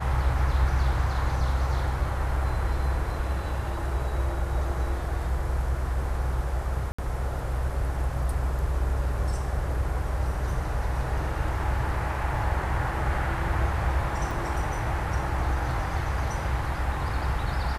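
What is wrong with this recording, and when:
6.92–6.99 s: dropout 65 ms
14.31 s: dropout 2.4 ms

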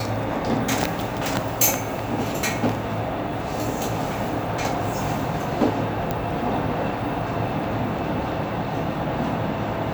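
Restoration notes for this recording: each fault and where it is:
6.11 s: pop -10 dBFS

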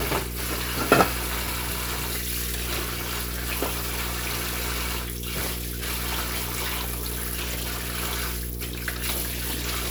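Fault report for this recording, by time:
hum 60 Hz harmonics 8 -33 dBFS

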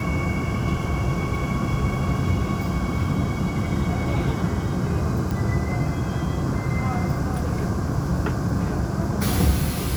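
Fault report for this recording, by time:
5.31 s: pop

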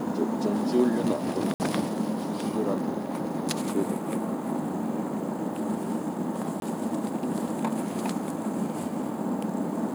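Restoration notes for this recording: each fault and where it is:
1.54–1.60 s: dropout 59 ms
6.60–6.62 s: dropout 22 ms

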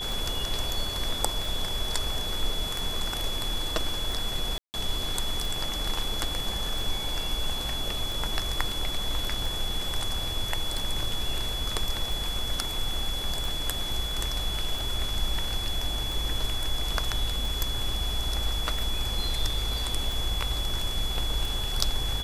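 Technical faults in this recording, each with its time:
tick 45 rpm
whine 3.4 kHz -32 dBFS
4.58–4.74 s: dropout 159 ms

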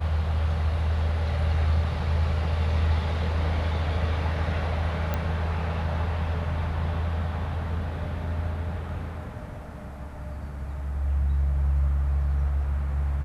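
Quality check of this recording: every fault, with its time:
5.14 s: pop -14 dBFS

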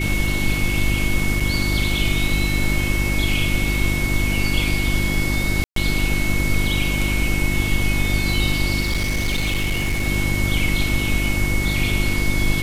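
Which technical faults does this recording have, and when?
hum 50 Hz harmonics 7 -23 dBFS
whine 2.2 kHz -25 dBFS
1.40 s: dropout 4.8 ms
5.64–5.76 s: dropout 123 ms
8.80–10.08 s: clipped -17 dBFS

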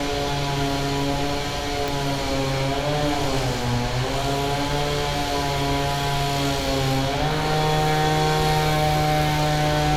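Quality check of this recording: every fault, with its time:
1.88 s: pop

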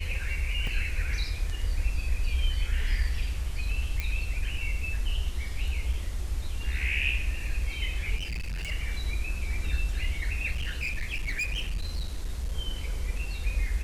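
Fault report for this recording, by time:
0.67 s: dropout 3.1 ms
4.00 s: pop -16 dBFS
5.93 s: dropout 3.4 ms
8.17–8.72 s: clipped -30 dBFS
10.51–12.53 s: clipped -26.5 dBFS

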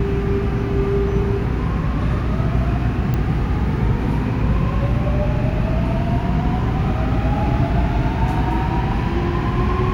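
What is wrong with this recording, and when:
3.14 s: pop -11 dBFS

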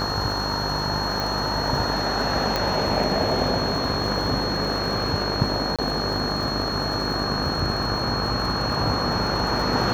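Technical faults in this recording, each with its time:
buzz 50 Hz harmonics 37 -30 dBFS
crackle 65 per s -30 dBFS
whine 4.3 kHz -28 dBFS
1.20 s: pop
2.56 s: pop -8 dBFS
5.76–5.79 s: dropout 26 ms

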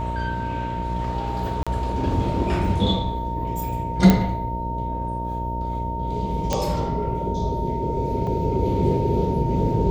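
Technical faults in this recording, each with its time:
buzz 60 Hz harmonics 11 -29 dBFS
whine 920 Hz -28 dBFS
1.63–1.67 s: dropout 36 ms
4.10 s: pop -3 dBFS
6.53 s: pop -8 dBFS
8.27 s: dropout 2.7 ms

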